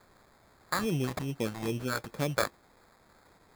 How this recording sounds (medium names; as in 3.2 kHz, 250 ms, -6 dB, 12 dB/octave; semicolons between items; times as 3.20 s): a quantiser's noise floor 10-bit, dither triangular; phasing stages 2, 2.4 Hz, lowest notch 270–2300 Hz; aliases and images of a low sample rate 2.9 kHz, jitter 0%